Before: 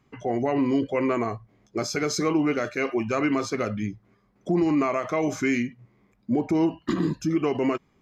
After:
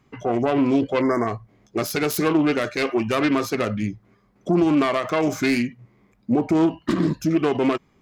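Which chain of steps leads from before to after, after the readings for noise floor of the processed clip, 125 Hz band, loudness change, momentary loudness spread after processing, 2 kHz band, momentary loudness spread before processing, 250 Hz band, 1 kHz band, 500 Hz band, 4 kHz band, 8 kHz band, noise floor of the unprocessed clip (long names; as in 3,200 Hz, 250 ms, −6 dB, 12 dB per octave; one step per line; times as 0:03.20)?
−61 dBFS, +4.0 dB, +3.5 dB, 9 LU, +3.5 dB, 9 LU, +4.0 dB, +4.0 dB, +3.5 dB, +5.0 dB, +1.0 dB, −65 dBFS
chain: phase distortion by the signal itself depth 0.14 ms
time-frequency box erased 0:01.02–0:01.27, 2,200–4,800 Hz
level +4 dB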